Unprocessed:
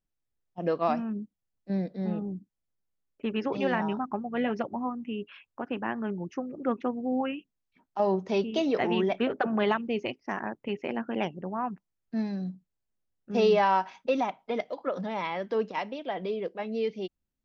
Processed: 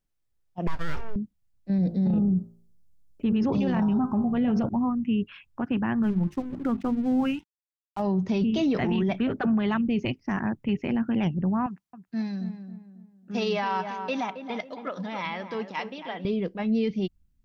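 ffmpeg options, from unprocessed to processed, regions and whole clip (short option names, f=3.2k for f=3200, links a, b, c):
-filter_complex "[0:a]asettb=1/sr,asplit=3[a][b][c];[a]atrim=end=0.674[d];[b]atrim=start=0.67:end=1.16,asetpts=PTS-STARTPTS,afade=t=in:d=0.004:c=qsin,afade=t=out:st=0.486:d=0.004:c=qsin,equalizer=f=260:t=o:w=0.45:g=-14.5,aeval=exprs='abs(val(0))':c=same[e];[c]atrim=start=1.156[f];[d][e]acrossfade=d=0.004:c1=hsin:c2=qsin[g];[g][f]acrossfade=d=0.004:c1=qsin:c2=hsin,asettb=1/sr,asplit=3[h][i][j];[h]atrim=end=1.784[k];[i]atrim=start=1.78:end=4.69,asetpts=PTS-STARTPTS,afade=t=in:d=0.004:c=qsin,afade=t=out:st=2.906:d=0.004:c=qsin,equalizer=f=1.9k:w=0.84:g=-9.5,bandreject=f=56.99:t=h:w=4,bandreject=f=113.98:t=h:w=4,bandreject=f=170.97:t=h:w=4,bandreject=f=227.96:t=h:w=4,bandreject=f=284.95:t=h:w=4,bandreject=f=341.94:t=h:w=4,bandreject=f=398.93:t=h:w=4,bandreject=f=455.92:t=h:w=4,bandreject=f=512.91:t=h:w=4,bandreject=f=569.9:t=h:w=4,bandreject=f=626.89:t=h:w=4,bandreject=f=683.88:t=h:w=4,bandreject=f=740.87:t=h:w=4,bandreject=f=797.86:t=h:w=4,bandreject=f=854.85:t=h:w=4,bandreject=f=911.84:t=h:w=4,bandreject=f=968.83:t=h:w=4,bandreject=f=1.02582k:t=h:w=4,bandreject=f=1.08281k:t=h:w=4,bandreject=f=1.1398k:t=h:w=4,bandreject=f=1.19679k:t=h:w=4,bandreject=f=1.25378k:t=h:w=4,bandreject=f=1.31077k:t=h:w=4,bandreject=f=1.36776k:t=h:w=4,bandreject=f=1.42475k:t=h:w=4,bandreject=f=1.48174k:t=h:w=4,bandreject=f=1.53873k:t=h:w=4,bandreject=f=1.59572k:t=h:w=4,acontrast=37[l];[j]atrim=start=4.686[m];[k][l]acrossfade=d=0.004:c1=hsin:c2=qsin[n];[n][m]acrossfade=d=0.004:c1=qsin:c2=hsin,asettb=1/sr,asplit=3[o][p][q];[o]atrim=end=6.034[r];[p]atrim=start=6.03:end=8.02,asetpts=PTS-STARTPTS,afade=t=in:d=0.004:c=qsin,afade=t=out:st=1.986:d=0.004:c=qsin,bandreject=f=50:t=h:w=6,bandreject=f=100:t=h:w=6,bandreject=f=150:t=h:w=6,bandreject=f=200:t=h:w=6,bandreject=f=250:t=h:w=6,bandreject=f=300:t=h:w=6,bandreject=f=350:t=h:w=6,aeval=exprs='sgn(val(0))*max(abs(val(0))-0.00316,0)':c=same[s];[q]atrim=start=8.016[t];[r][s]acrossfade=d=0.004:c1=hsin:c2=qsin[u];[u][t]acrossfade=d=0.004:c1=qsin:c2=hsin,asettb=1/sr,asplit=3[v][w][x];[v]atrim=end=11.664[y];[w]atrim=start=11.66:end=16.25,asetpts=PTS-STARTPTS,afade=t=in:d=0.004:c=qsin,afade=t=out:st=4.586:d=0.004:c=qsin,highpass=f=780:p=1,asplit=2[z][aa];[aa]adelay=272,lowpass=f=1.5k:p=1,volume=-9dB,asplit=2[ab][ac];[ac]adelay=272,lowpass=f=1.5k:p=1,volume=0.4,asplit=2[ad][ae];[ae]adelay=272,lowpass=f=1.5k:p=1,volume=0.4,asplit=2[af][ag];[ag]adelay=272,lowpass=f=1.5k:p=1,volume=0.4[ah];[z][ab][ad][af][ah]amix=inputs=5:normalize=0,atrim=end_sample=202419[ai];[x]atrim=start=16.246[aj];[y][ai]acrossfade=d=0.004:c1=hsin:c2=qsin[ak];[ak][aj]acrossfade=d=0.004:c1=qsin:c2=hsin,asubboost=boost=8:cutoff=170,alimiter=limit=-21.5dB:level=0:latency=1:release=13,volume=3.5dB"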